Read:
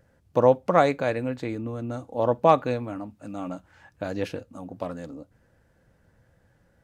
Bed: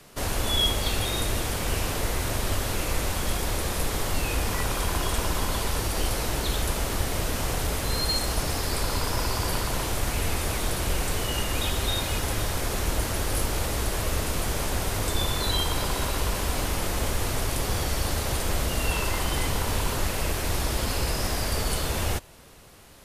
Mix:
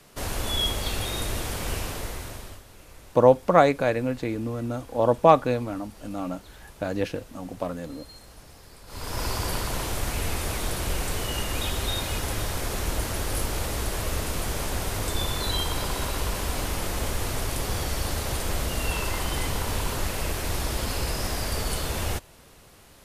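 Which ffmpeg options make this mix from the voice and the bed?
ffmpeg -i stem1.wav -i stem2.wav -filter_complex "[0:a]adelay=2800,volume=2dB[link_01];[1:a]volume=17.5dB,afade=type=out:start_time=1.7:duration=0.93:silence=0.112202,afade=type=in:start_time=8.86:duration=0.4:silence=0.1[link_02];[link_01][link_02]amix=inputs=2:normalize=0" out.wav

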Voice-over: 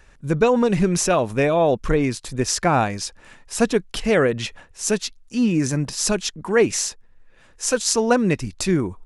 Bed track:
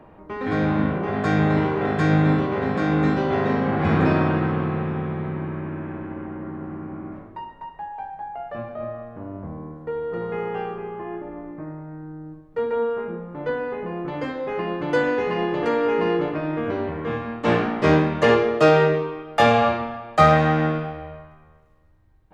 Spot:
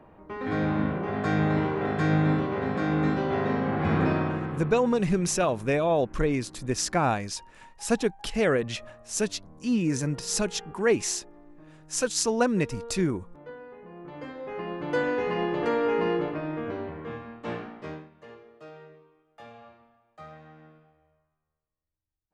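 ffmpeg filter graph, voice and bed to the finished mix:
ffmpeg -i stem1.wav -i stem2.wav -filter_complex "[0:a]adelay=4300,volume=-6dB[link_01];[1:a]volume=8dB,afade=type=out:start_time=3.99:duration=0.85:silence=0.251189,afade=type=in:start_time=13.84:duration=1.48:silence=0.223872,afade=type=out:start_time=15.96:duration=2.14:silence=0.0421697[link_02];[link_01][link_02]amix=inputs=2:normalize=0" out.wav

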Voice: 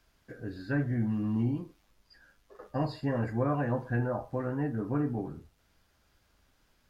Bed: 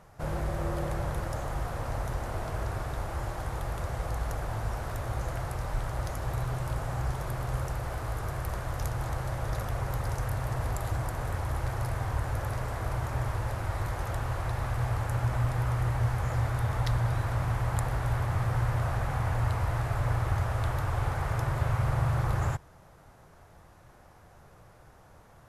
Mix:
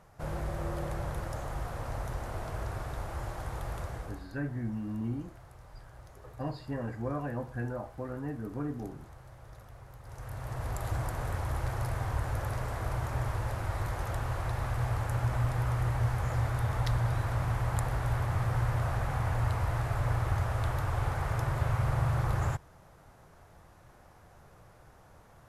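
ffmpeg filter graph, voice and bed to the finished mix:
ffmpeg -i stem1.wav -i stem2.wav -filter_complex "[0:a]adelay=3650,volume=-5.5dB[link_01];[1:a]volume=13.5dB,afade=type=out:start_time=3.79:duration=0.49:silence=0.177828,afade=type=in:start_time=10.03:duration=0.93:silence=0.141254[link_02];[link_01][link_02]amix=inputs=2:normalize=0" out.wav

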